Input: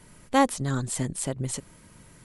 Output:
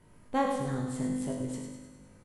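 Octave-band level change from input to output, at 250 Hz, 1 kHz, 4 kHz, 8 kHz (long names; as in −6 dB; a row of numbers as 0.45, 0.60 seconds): −3.0, −6.0, −11.5, −14.0 decibels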